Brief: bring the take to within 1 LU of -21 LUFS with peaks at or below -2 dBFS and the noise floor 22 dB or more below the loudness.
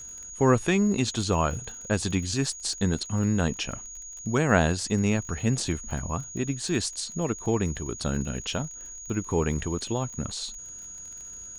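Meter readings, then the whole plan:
tick rate 34 per s; steady tone 6.7 kHz; tone level -39 dBFS; loudness -27.5 LUFS; peak level -6.5 dBFS; loudness target -21.0 LUFS
-> de-click; band-stop 6.7 kHz, Q 30; trim +6.5 dB; peak limiter -2 dBFS

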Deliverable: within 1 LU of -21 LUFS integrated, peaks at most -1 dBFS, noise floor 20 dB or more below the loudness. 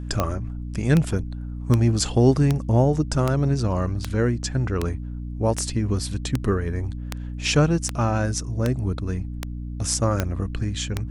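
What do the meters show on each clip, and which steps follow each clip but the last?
clicks found 15; hum 60 Hz; highest harmonic 300 Hz; hum level -28 dBFS; loudness -23.5 LUFS; peak level -5.0 dBFS; loudness target -21.0 LUFS
-> de-click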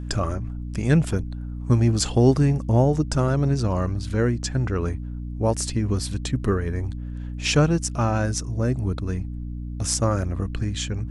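clicks found 0; hum 60 Hz; highest harmonic 300 Hz; hum level -28 dBFS
-> hum notches 60/120/180/240/300 Hz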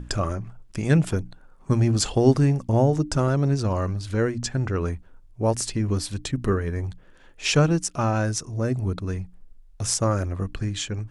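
hum not found; loudness -24.0 LUFS; peak level -5.5 dBFS; loudness target -21.0 LUFS
-> trim +3 dB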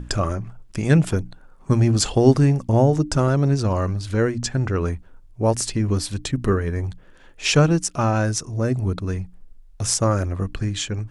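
loudness -21.0 LUFS; peak level -2.5 dBFS; noise floor -48 dBFS

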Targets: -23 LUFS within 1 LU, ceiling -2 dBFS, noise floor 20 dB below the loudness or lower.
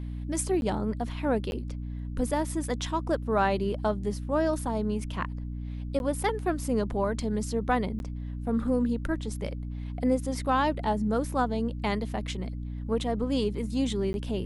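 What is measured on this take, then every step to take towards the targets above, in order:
dropouts 5; longest dropout 11 ms; hum 60 Hz; highest harmonic 300 Hz; hum level -33 dBFS; loudness -29.5 LUFS; peak level -13.0 dBFS; loudness target -23.0 LUFS
-> interpolate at 0.61/1.51/5.99/7.99/14.13 s, 11 ms; de-hum 60 Hz, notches 5; trim +6.5 dB

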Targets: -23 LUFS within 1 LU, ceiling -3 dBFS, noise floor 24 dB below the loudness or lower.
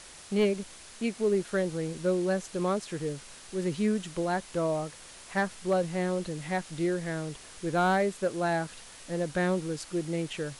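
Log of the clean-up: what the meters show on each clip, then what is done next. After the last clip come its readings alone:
clipped samples 0.2%; clipping level -19.0 dBFS; noise floor -49 dBFS; noise floor target -55 dBFS; loudness -30.5 LUFS; peak level -19.0 dBFS; loudness target -23.0 LUFS
-> clip repair -19 dBFS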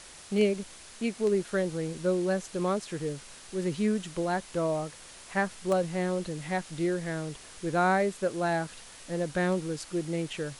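clipped samples 0.0%; noise floor -49 dBFS; noise floor target -55 dBFS
-> noise reduction 6 dB, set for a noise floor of -49 dBFS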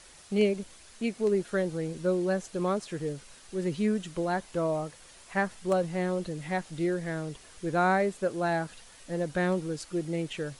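noise floor -53 dBFS; noise floor target -55 dBFS
-> noise reduction 6 dB, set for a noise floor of -53 dBFS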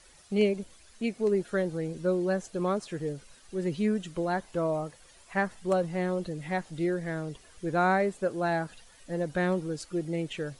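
noise floor -56 dBFS; loudness -30.5 LUFS; peak level -13.0 dBFS; loudness target -23.0 LUFS
-> trim +7.5 dB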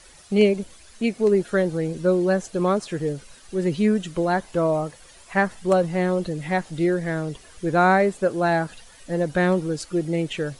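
loudness -23.0 LUFS; peak level -5.5 dBFS; noise floor -49 dBFS

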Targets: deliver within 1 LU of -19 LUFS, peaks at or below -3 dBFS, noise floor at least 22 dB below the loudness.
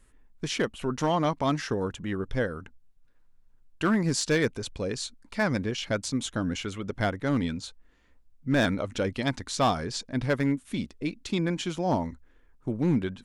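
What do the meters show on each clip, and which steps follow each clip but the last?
clipped samples 0.4%; clipping level -17.0 dBFS; loudness -29.0 LUFS; peak level -17.0 dBFS; loudness target -19.0 LUFS
-> clip repair -17 dBFS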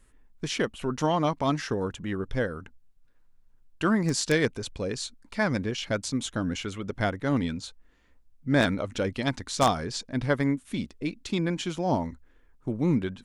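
clipped samples 0.0%; loudness -28.5 LUFS; peak level -8.0 dBFS; loudness target -19.0 LUFS
-> trim +9.5 dB; peak limiter -3 dBFS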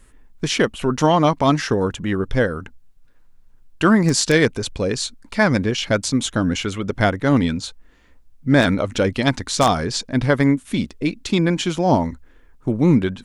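loudness -19.5 LUFS; peak level -3.0 dBFS; noise floor -51 dBFS

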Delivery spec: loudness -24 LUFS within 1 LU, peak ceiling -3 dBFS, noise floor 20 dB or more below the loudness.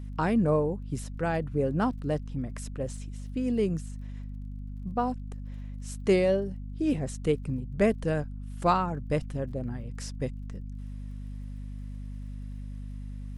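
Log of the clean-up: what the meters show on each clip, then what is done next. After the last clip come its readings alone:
tick rate 26 per s; hum 50 Hz; highest harmonic 250 Hz; hum level -35 dBFS; loudness -30.0 LUFS; peak level -11.5 dBFS; loudness target -24.0 LUFS
-> de-click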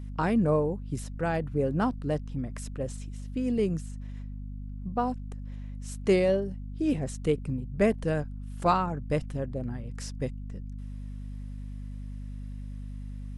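tick rate 0 per s; hum 50 Hz; highest harmonic 250 Hz; hum level -35 dBFS
-> hum notches 50/100/150/200/250 Hz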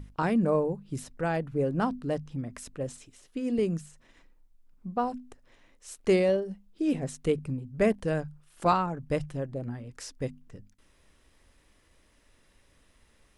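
hum not found; loudness -30.0 LUFS; peak level -11.5 dBFS; loudness target -24.0 LUFS
-> trim +6 dB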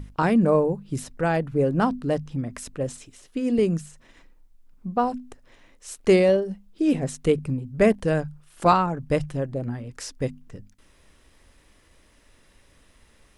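loudness -24.0 LUFS; peak level -5.5 dBFS; noise floor -58 dBFS

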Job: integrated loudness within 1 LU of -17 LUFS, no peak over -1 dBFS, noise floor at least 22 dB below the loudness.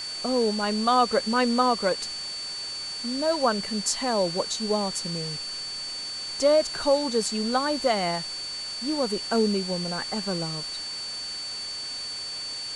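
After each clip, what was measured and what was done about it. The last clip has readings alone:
steady tone 4.5 kHz; tone level -32 dBFS; noise floor -34 dBFS; noise floor target -48 dBFS; loudness -26.0 LUFS; peak level -8.5 dBFS; loudness target -17.0 LUFS
-> band-stop 4.5 kHz, Q 30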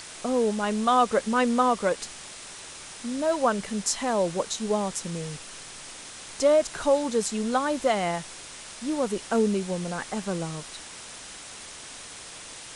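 steady tone not found; noise floor -43 dBFS; noise floor target -48 dBFS
-> noise print and reduce 6 dB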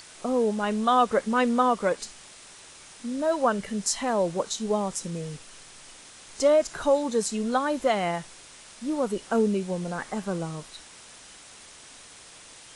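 noise floor -49 dBFS; loudness -26.0 LUFS; peak level -8.5 dBFS; loudness target -17.0 LUFS
-> trim +9 dB; peak limiter -1 dBFS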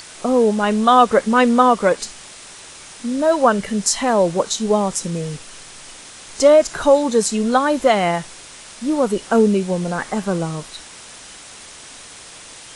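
loudness -17.0 LUFS; peak level -1.0 dBFS; noise floor -40 dBFS

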